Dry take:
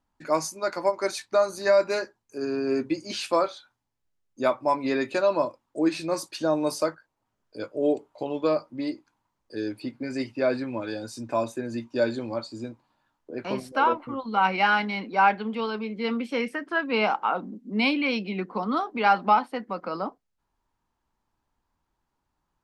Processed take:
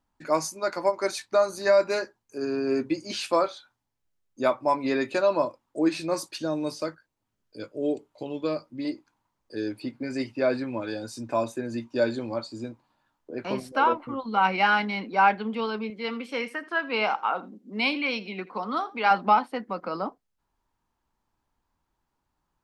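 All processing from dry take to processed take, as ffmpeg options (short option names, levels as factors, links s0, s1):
-filter_complex "[0:a]asettb=1/sr,asplit=3[s0][s1][s2];[s0]atrim=end=6.384[s3];[s1]atrim=start=6.38:end=8.85,asetpts=PTS-STARTPTS,afade=t=in:d=0.004:c=qsin,afade=t=out:st=2.466:d=0.004:c=qsin,acrossover=split=5200[s4][s5];[s5]acompressor=threshold=0.00316:ratio=4:attack=1:release=60[s6];[s4][s6]amix=inputs=2:normalize=0,equalizer=f=850:w=0.71:g=-8[s7];[s2]atrim=start=8.846[s8];[s3][s7]acrossfade=d=0.004:c1=hsin:c2=qsin[s9];[s9][s8]acrossfade=d=0.004:c1=qsin:c2=hsin,asettb=1/sr,asplit=3[s10][s11][s12];[s10]atrim=end=15.904[s13];[s11]atrim=start=15.9:end=19.11,asetpts=PTS-STARTPTS,afade=t=in:d=0.004:c=qsin,afade=t=out:st=3.206:d=0.004:c=qsin,lowshelf=f=330:g=-10,aecho=1:1:82:0.112,atrim=end_sample=141561[s14];[s12]atrim=start=19.106[s15];[s13][s14]acrossfade=d=0.004:c1=hsin:c2=qsin[s16];[s16][s15]acrossfade=d=0.004:c1=qsin:c2=hsin"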